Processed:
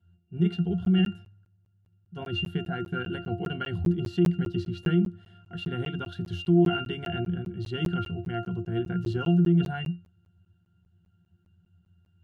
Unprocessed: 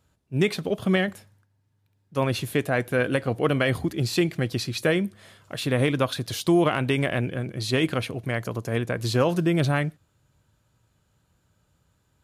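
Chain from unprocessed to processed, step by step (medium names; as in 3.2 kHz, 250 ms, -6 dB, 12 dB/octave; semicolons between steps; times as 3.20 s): peaking EQ 570 Hz -13.5 dB 2.1 oct; pitch-class resonator F, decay 0.24 s; in parallel at +3 dB: compressor with a negative ratio -38 dBFS, ratio -1; on the sum: high-pass 93 Hz 24 dB/octave; crackling interface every 0.20 s, samples 512, zero, from 0.85 s; trim +8.5 dB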